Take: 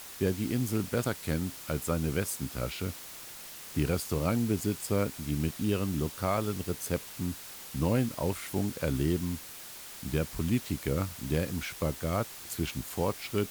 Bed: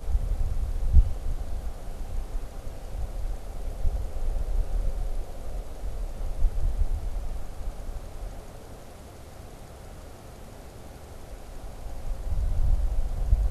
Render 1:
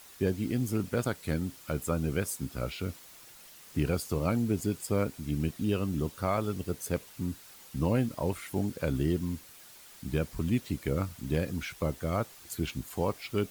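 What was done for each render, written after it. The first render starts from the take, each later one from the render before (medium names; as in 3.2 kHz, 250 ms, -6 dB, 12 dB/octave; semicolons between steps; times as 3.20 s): noise reduction 8 dB, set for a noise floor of -45 dBFS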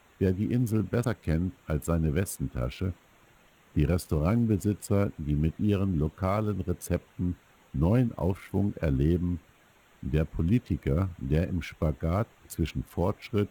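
local Wiener filter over 9 samples; bass shelf 260 Hz +6 dB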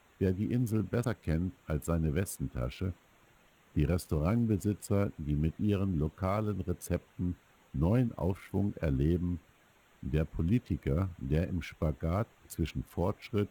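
trim -4 dB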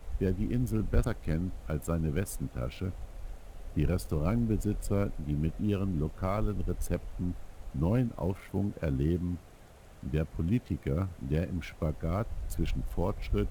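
add bed -10.5 dB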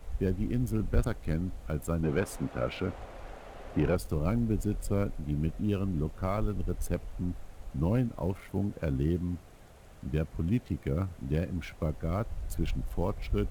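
2.03–3.96 s: overdrive pedal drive 20 dB, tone 1.3 kHz, clips at -14.5 dBFS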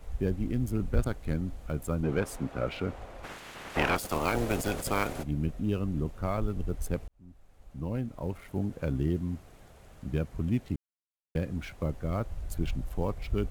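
3.23–5.22 s: spectral peaks clipped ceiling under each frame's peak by 26 dB; 7.08–8.69 s: fade in; 10.76–11.35 s: mute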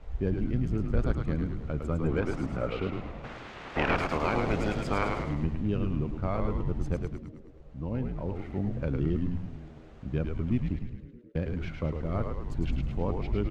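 distance through air 150 m; frequency-shifting echo 106 ms, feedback 56%, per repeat -81 Hz, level -4 dB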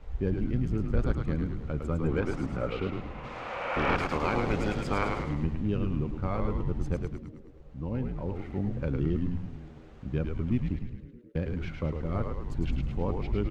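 3.12–3.88 s: spectral replace 470–3200 Hz both; band-stop 650 Hz, Q 12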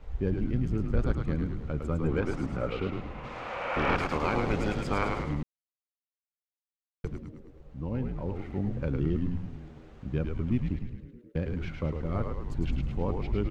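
5.43–7.04 s: mute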